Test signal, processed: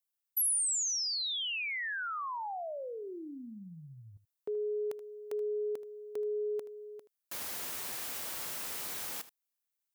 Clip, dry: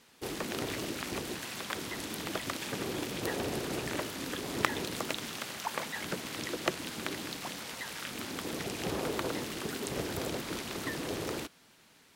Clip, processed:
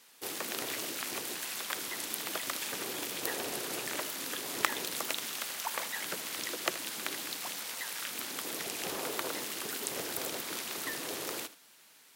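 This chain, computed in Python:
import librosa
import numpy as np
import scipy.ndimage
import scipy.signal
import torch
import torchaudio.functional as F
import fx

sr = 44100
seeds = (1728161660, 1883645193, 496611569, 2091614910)

p1 = fx.highpass(x, sr, hz=630.0, slope=6)
p2 = fx.high_shelf(p1, sr, hz=8800.0, db=11.5)
y = p2 + fx.echo_single(p2, sr, ms=78, db=-15.5, dry=0)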